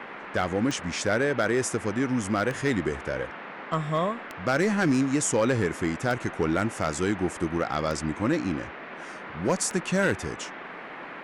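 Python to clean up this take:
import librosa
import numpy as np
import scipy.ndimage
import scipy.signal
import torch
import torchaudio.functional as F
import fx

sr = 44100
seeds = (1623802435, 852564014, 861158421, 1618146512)

y = fx.fix_declip(x, sr, threshold_db=-16.0)
y = fx.fix_declick_ar(y, sr, threshold=10.0)
y = fx.noise_reduce(y, sr, print_start_s=10.5, print_end_s=11.0, reduce_db=30.0)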